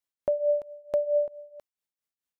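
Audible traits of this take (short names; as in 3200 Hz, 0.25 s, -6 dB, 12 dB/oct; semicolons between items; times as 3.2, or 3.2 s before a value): tremolo triangle 4.5 Hz, depth 85%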